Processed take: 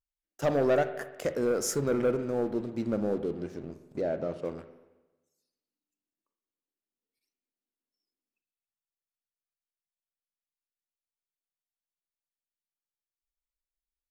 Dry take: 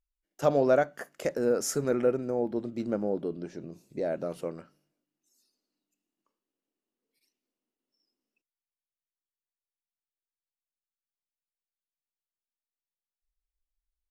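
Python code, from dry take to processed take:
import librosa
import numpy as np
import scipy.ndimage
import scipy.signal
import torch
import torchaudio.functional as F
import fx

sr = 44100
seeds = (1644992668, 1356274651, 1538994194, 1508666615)

y = fx.peak_eq(x, sr, hz=82.0, db=12.0, octaves=0.53)
y = fx.leveller(y, sr, passes=2)
y = fx.air_absorb(y, sr, metres=100.0, at=(4.01, 4.45))
y = fx.rev_spring(y, sr, rt60_s=1.1, pass_ms=(44, 57), chirp_ms=40, drr_db=10.5)
y = F.gain(torch.from_numpy(y), -7.0).numpy()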